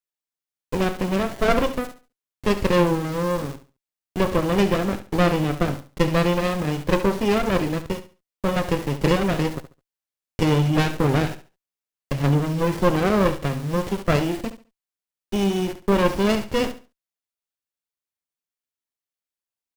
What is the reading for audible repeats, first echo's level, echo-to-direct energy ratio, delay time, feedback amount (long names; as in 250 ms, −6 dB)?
2, −12.5 dB, −12.0 dB, 70 ms, 24%